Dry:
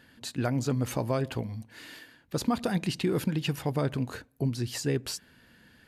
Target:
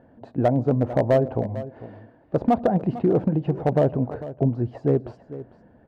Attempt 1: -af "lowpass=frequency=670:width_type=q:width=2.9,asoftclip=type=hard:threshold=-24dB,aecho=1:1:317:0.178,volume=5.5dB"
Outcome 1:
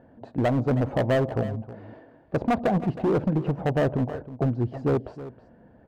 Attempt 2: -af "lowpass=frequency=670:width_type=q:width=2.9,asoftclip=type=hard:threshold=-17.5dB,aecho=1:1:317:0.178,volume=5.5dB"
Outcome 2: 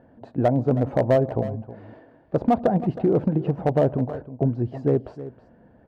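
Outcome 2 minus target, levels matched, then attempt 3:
echo 132 ms early
-af "lowpass=frequency=670:width_type=q:width=2.9,asoftclip=type=hard:threshold=-17.5dB,aecho=1:1:449:0.178,volume=5.5dB"

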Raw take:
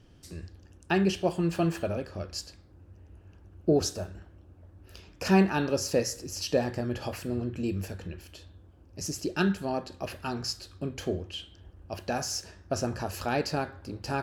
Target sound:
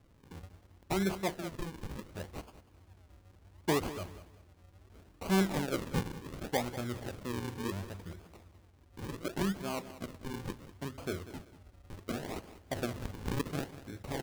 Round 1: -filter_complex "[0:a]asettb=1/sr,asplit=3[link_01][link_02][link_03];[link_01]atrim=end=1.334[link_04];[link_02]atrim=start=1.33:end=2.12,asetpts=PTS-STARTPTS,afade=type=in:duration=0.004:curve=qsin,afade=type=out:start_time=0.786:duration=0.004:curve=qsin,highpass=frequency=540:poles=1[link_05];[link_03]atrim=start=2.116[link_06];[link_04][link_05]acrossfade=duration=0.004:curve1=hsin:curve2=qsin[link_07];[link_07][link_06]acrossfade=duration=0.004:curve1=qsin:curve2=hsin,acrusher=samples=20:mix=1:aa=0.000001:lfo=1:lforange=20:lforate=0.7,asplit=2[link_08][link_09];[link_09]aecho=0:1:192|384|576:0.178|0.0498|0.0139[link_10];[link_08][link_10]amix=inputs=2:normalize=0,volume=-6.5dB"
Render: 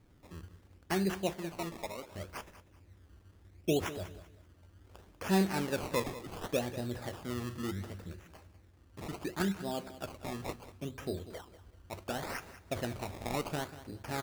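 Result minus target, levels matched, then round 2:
sample-and-hold swept by an LFO: distortion −7 dB
-filter_complex "[0:a]asettb=1/sr,asplit=3[link_01][link_02][link_03];[link_01]atrim=end=1.334[link_04];[link_02]atrim=start=1.33:end=2.12,asetpts=PTS-STARTPTS,afade=type=in:duration=0.004:curve=qsin,afade=type=out:start_time=0.786:duration=0.004:curve=qsin,highpass=frequency=540:poles=1[link_05];[link_03]atrim=start=2.116[link_06];[link_04][link_05]acrossfade=duration=0.004:curve1=hsin:curve2=qsin[link_07];[link_07][link_06]acrossfade=duration=0.004:curve1=qsin:curve2=hsin,acrusher=samples=46:mix=1:aa=0.000001:lfo=1:lforange=46:lforate=0.7,asplit=2[link_08][link_09];[link_09]aecho=0:1:192|384|576:0.178|0.0498|0.0139[link_10];[link_08][link_10]amix=inputs=2:normalize=0,volume=-6.5dB"

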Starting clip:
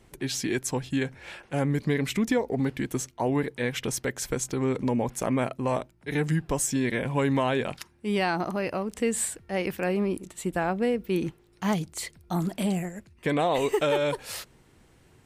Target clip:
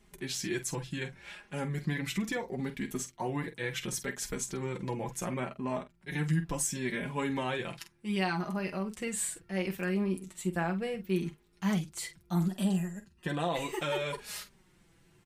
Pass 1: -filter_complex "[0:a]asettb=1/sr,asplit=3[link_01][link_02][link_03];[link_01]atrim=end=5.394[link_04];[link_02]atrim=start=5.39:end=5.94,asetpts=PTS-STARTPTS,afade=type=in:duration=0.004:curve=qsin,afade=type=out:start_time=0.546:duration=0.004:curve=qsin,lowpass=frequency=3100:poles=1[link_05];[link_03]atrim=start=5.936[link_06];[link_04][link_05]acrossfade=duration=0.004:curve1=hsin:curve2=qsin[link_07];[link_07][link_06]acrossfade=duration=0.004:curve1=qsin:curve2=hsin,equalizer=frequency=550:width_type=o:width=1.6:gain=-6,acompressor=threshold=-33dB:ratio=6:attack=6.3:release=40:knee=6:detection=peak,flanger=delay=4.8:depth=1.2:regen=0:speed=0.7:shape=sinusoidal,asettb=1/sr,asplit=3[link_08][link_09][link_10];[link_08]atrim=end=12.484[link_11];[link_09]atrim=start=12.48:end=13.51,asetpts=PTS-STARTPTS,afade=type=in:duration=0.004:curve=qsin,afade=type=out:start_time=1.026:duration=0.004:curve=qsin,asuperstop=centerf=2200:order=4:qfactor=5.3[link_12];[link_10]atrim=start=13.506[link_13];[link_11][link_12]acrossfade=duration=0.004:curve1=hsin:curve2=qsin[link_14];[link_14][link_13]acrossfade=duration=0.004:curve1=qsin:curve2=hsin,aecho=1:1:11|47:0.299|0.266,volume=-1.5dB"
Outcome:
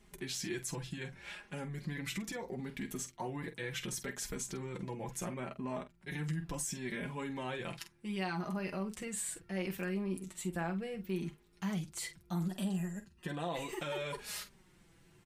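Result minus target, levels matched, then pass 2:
downward compressor: peak gain reduction +11 dB
-filter_complex "[0:a]asettb=1/sr,asplit=3[link_01][link_02][link_03];[link_01]atrim=end=5.394[link_04];[link_02]atrim=start=5.39:end=5.94,asetpts=PTS-STARTPTS,afade=type=in:duration=0.004:curve=qsin,afade=type=out:start_time=0.546:duration=0.004:curve=qsin,lowpass=frequency=3100:poles=1[link_05];[link_03]atrim=start=5.936[link_06];[link_04][link_05]acrossfade=duration=0.004:curve1=hsin:curve2=qsin[link_07];[link_07][link_06]acrossfade=duration=0.004:curve1=qsin:curve2=hsin,equalizer=frequency=550:width_type=o:width=1.6:gain=-6,flanger=delay=4.8:depth=1.2:regen=0:speed=0.7:shape=sinusoidal,asettb=1/sr,asplit=3[link_08][link_09][link_10];[link_08]atrim=end=12.484[link_11];[link_09]atrim=start=12.48:end=13.51,asetpts=PTS-STARTPTS,afade=type=in:duration=0.004:curve=qsin,afade=type=out:start_time=1.026:duration=0.004:curve=qsin,asuperstop=centerf=2200:order=4:qfactor=5.3[link_12];[link_10]atrim=start=13.506[link_13];[link_11][link_12]acrossfade=duration=0.004:curve1=hsin:curve2=qsin[link_14];[link_14][link_13]acrossfade=duration=0.004:curve1=qsin:curve2=hsin,aecho=1:1:11|47:0.299|0.266,volume=-1.5dB"

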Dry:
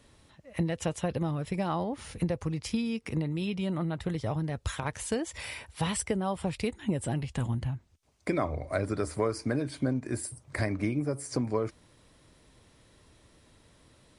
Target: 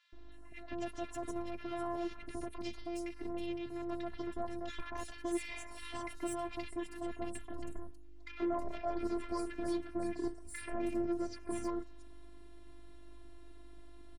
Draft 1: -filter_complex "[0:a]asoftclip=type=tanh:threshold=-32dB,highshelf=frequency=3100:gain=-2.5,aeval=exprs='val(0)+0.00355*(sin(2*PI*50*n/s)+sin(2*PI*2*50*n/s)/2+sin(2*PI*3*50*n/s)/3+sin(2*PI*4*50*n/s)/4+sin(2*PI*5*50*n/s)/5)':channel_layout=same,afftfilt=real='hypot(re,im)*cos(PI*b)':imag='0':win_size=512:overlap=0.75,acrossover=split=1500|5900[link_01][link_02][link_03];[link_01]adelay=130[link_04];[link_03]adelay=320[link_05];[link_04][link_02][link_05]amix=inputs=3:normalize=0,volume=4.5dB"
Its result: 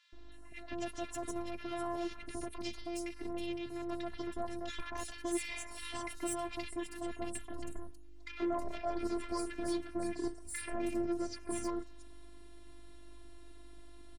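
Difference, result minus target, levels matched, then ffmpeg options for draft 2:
8,000 Hz band +6.0 dB
-filter_complex "[0:a]asoftclip=type=tanh:threshold=-32dB,highshelf=frequency=3100:gain=-10,aeval=exprs='val(0)+0.00355*(sin(2*PI*50*n/s)+sin(2*PI*2*50*n/s)/2+sin(2*PI*3*50*n/s)/3+sin(2*PI*4*50*n/s)/4+sin(2*PI*5*50*n/s)/5)':channel_layout=same,afftfilt=real='hypot(re,im)*cos(PI*b)':imag='0':win_size=512:overlap=0.75,acrossover=split=1500|5900[link_01][link_02][link_03];[link_01]adelay=130[link_04];[link_03]adelay=320[link_05];[link_04][link_02][link_05]amix=inputs=3:normalize=0,volume=4.5dB"

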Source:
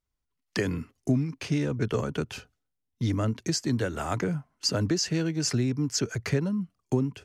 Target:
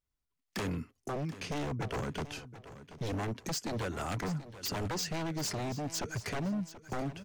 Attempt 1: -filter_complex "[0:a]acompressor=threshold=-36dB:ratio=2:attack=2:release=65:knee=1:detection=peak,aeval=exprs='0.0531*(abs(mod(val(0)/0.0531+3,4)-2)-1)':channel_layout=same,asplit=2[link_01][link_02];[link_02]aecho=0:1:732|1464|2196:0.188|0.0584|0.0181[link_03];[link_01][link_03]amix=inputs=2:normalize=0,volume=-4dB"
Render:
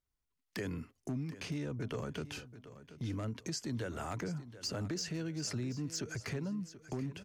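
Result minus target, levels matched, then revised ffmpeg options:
downward compressor: peak gain reduction +10.5 dB
-filter_complex "[0:a]aeval=exprs='0.0531*(abs(mod(val(0)/0.0531+3,4)-2)-1)':channel_layout=same,asplit=2[link_01][link_02];[link_02]aecho=0:1:732|1464|2196:0.188|0.0584|0.0181[link_03];[link_01][link_03]amix=inputs=2:normalize=0,volume=-4dB"

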